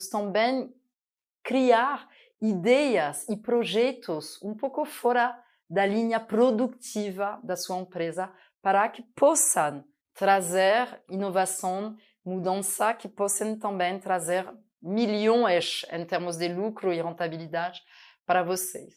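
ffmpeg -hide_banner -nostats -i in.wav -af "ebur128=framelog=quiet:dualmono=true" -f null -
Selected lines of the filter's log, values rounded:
Integrated loudness:
  I:         -23.6 LUFS
  Threshold: -33.9 LUFS
Loudness range:
  LRA:         3.8 LU
  Threshold: -43.9 LUFS
  LRA low:   -25.6 LUFS
  LRA high:  -21.8 LUFS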